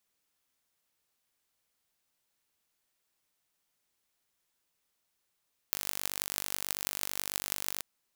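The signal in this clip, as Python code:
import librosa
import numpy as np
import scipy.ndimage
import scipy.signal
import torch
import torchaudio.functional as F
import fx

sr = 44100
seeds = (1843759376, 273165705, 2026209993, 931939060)

y = fx.impulse_train(sr, length_s=2.09, per_s=49.1, accent_every=8, level_db=-2.5)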